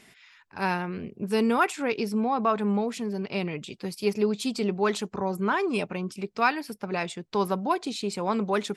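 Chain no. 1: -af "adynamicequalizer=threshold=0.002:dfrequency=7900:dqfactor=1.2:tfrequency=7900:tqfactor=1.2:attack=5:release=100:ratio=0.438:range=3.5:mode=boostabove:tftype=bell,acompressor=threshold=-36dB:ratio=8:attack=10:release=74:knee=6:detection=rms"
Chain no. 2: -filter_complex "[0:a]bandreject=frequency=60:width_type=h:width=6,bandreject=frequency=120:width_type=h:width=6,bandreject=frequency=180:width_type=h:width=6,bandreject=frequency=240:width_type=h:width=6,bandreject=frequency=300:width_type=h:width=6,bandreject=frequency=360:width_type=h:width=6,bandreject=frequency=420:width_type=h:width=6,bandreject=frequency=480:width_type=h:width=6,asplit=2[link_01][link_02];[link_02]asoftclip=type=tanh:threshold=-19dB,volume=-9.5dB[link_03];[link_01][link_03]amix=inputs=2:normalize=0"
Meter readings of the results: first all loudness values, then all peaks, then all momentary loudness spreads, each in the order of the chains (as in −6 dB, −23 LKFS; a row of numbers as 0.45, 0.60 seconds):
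−39.0, −26.0 LKFS; −24.5, −8.5 dBFS; 3, 9 LU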